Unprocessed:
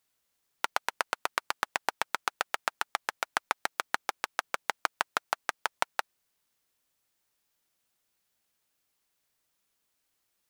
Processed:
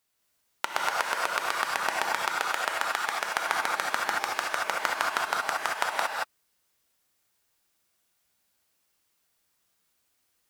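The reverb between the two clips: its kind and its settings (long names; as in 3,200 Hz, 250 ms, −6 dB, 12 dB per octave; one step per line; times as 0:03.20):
reverb whose tail is shaped and stops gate 250 ms rising, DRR −3 dB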